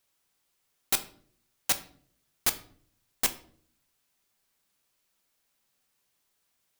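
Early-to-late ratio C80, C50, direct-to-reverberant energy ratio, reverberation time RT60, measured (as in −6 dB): 18.5 dB, 14.5 dB, 8.0 dB, 0.55 s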